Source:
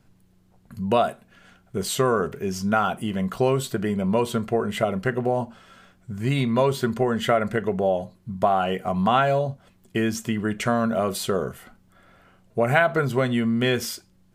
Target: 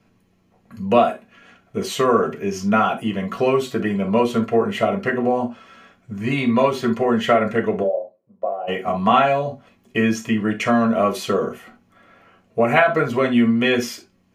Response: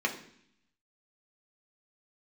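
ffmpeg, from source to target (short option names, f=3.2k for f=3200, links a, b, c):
-filter_complex "[0:a]asplit=3[a][b][c];[a]afade=t=out:st=7.82:d=0.02[d];[b]bandpass=f=550:t=q:w=5.7:csg=0,afade=t=in:st=7.82:d=0.02,afade=t=out:st=8.67:d=0.02[e];[c]afade=t=in:st=8.67:d=0.02[f];[d][e][f]amix=inputs=3:normalize=0[g];[1:a]atrim=start_sample=2205,atrim=end_sample=3528[h];[g][h]afir=irnorm=-1:irlink=0,volume=-3dB"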